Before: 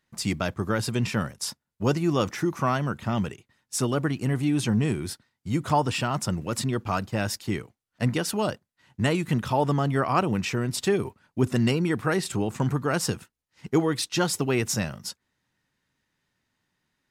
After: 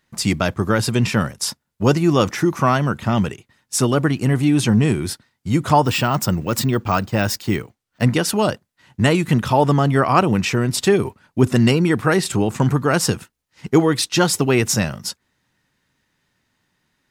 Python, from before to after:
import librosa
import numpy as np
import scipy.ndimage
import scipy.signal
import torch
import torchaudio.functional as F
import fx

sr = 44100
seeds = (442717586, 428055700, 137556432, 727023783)

y = fx.resample_bad(x, sr, factor=2, down='filtered', up='hold', at=(5.85, 8.03))
y = F.gain(torch.from_numpy(y), 8.0).numpy()